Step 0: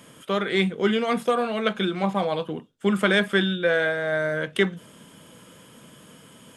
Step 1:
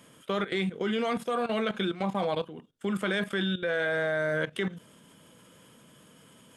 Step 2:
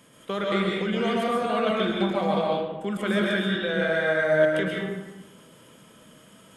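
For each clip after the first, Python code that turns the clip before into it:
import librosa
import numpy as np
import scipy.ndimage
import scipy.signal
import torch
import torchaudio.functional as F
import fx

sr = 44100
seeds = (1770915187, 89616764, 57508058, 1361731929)

y1 = fx.level_steps(x, sr, step_db=14)
y2 = fx.rev_freeverb(y1, sr, rt60_s=1.1, hf_ratio=0.6, predelay_ms=90, drr_db=-3.0)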